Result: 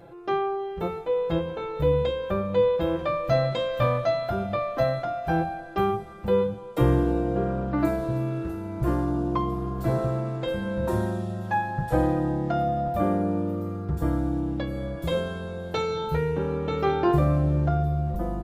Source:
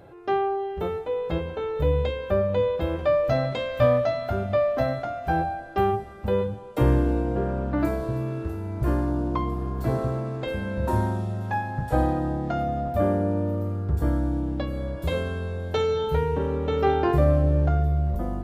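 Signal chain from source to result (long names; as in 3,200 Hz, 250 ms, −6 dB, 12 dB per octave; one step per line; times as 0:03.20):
comb filter 5.9 ms, depth 59%
level −1 dB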